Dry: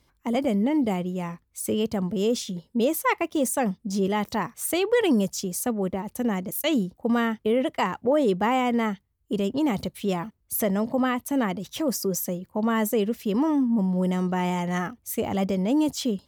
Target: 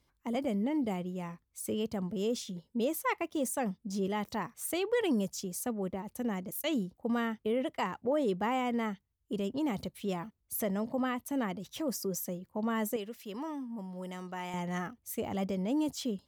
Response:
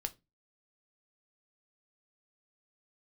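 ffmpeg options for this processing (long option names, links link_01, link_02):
-filter_complex "[0:a]asettb=1/sr,asplit=3[link_01][link_02][link_03];[link_01]atrim=end=12.964[link_04];[link_02]atrim=start=12.96:end=14.54,asetpts=PTS-STARTPTS,afade=type=in:duration=0.004:curve=qsin,afade=type=out:start_time=1.576:duration=0.004:curve=qsin,lowshelf=frequency=470:gain=-12[link_05];[link_03]atrim=start=14.536[link_06];[link_04][link_05]acrossfade=duration=0.004:curve1=hsin:curve2=qsin[link_07];[link_07][link_06]acrossfade=duration=0.004:curve1=qsin:curve2=hsin,volume=-8.5dB"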